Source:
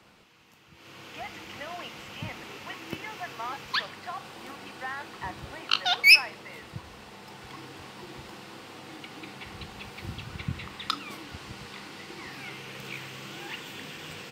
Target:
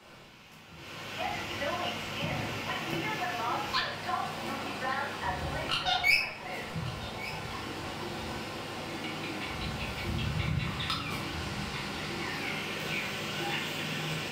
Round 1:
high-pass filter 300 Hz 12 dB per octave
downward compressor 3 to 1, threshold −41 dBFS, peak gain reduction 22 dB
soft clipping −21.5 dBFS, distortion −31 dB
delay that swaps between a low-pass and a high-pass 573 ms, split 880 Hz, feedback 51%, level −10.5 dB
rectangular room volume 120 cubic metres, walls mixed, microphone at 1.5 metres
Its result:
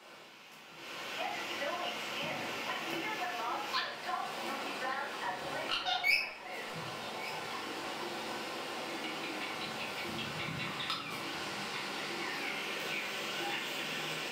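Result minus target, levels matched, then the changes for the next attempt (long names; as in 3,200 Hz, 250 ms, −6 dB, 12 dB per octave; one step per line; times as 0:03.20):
downward compressor: peak gain reduction +5 dB; 250 Hz band −3.0 dB
change: downward compressor 3 to 1, threshold −33.5 dBFS, peak gain reduction 17 dB
remove: high-pass filter 300 Hz 12 dB per octave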